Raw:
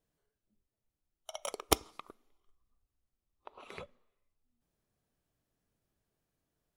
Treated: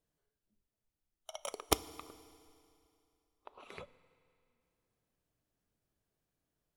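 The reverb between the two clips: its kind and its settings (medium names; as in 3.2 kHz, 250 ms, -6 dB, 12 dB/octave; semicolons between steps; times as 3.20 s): FDN reverb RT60 2.6 s, high-frequency decay 0.95×, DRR 16 dB; trim -2.5 dB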